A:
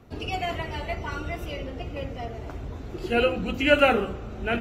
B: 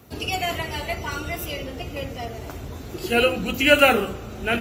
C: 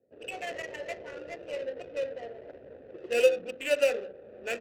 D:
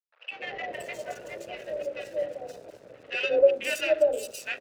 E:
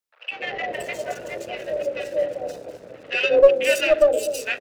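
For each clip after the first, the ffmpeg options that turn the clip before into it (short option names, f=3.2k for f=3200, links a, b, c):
-af "highpass=60,aemphasis=mode=production:type=75fm,volume=3dB"
-filter_complex "[0:a]dynaudnorm=f=180:g=3:m=7.5dB,asplit=3[a][b][c];[a]bandpass=f=530:t=q:w=8,volume=0dB[d];[b]bandpass=f=1.84k:t=q:w=8,volume=-6dB[e];[c]bandpass=f=2.48k:t=q:w=8,volume=-9dB[f];[d][e][f]amix=inputs=3:normalize=0,adynamicsmooth=sensitivity=5:basefreq=580,volume=-3.5dB"
-filter_complex "[0:a]aeval=exprs='sgn(val(0))*max(abs(val(0))-0.00224,0)':c=same,acrossover=split=860|4300[a][b][c];[a]adelay=190[d];[c]adelay=520[e];[d][b][e]amix=inputs=3:normalize=0,afreqshift=38,volume=4.5dB"
-filter_complex "[0:a]acrossover=split=630|1500[a][b][c];[a]aecho=1:1:252:0.447[d];[b]aeval=exprs='clip(val(0),-1,0.0299)':c=same[e];[d][e][c]amix=inputs=3:normalize=0,volume=7dB"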